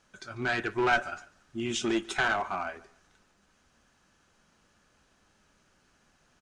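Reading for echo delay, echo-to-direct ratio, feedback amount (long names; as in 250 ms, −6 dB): 144 ms, −21.5 dB, 31%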